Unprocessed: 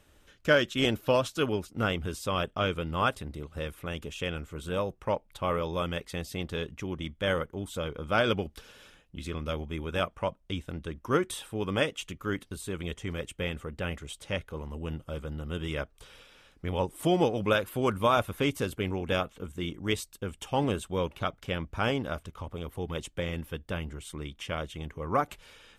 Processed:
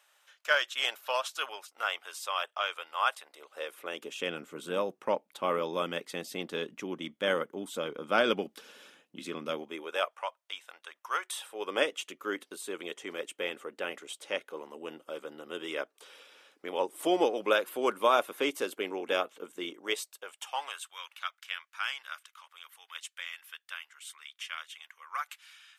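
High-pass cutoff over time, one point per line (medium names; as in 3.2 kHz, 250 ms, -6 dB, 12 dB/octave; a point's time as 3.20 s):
high-pass 24 dB/octave
3.19 s 730 Hz
4.31 s 220 Hz
9.51 s 220 Hz
10.28 s 770 Hz
11.23 s 770 Hz
11.80 s 320 Hz
19.66 s 320 Hz
20.97 s 1.3 kHz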